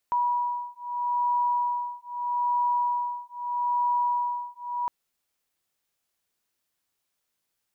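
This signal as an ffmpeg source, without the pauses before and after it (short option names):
-f lavfi -i "aevalsrc='0.0447*(sin(2*PI*970*t)+sin(2*PI*970.79*t))':d=4.76:s=44100"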